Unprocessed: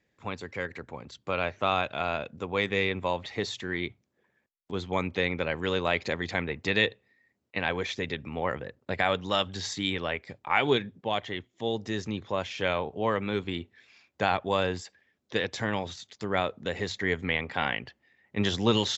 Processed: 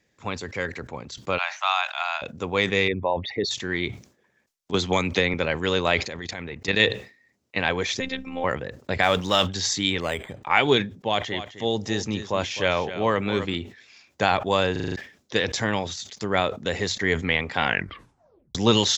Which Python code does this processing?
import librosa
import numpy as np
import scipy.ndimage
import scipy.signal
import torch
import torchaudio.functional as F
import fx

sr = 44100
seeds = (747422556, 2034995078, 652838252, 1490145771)

y = fx.steep_highpass(x, sr, hz=760.0, slope=48, at=(1.37, 2.21), fade=0.02)
y = fx.envelope_sharpen(y, sr, power=2.0, at=(2.88, 3.51))
y = fx.band_squash(y, sr, depth_pct=100, at=(4.74, 5.34))
y = fx.level_steps(y, sr, step_db=13, at=(6.05, 6.8))
y = fx.robotise(y, sr, hz=262.0, at=(8.0, 8.44))
y = fx.law_mismatch(y, sr, coded='mu', at=(9.02, 9.46), fade=0.02)
y = fx.resample_linear(y, sr, factor=8, at=(10.0, 10.43))
y = fx.echo_single(y, sr, ms=259, db=-12.5, at=(11.0, 13.55))
y = fx.edit(y, sr, fx.stutter_over(start_s=14.72, slice_s=0.04, count=6),
    fx.tape_stop(start_s=17.65, length_s=0.9), tone=tone)
y = fx.peak_eq(y, sr, hz=6100.0, db=7.5, octaves=1.0)
y = fx.sustainer(y, sr, db_per_s=140.0)
y = y * 10.0 ** (4.5 / 20.0)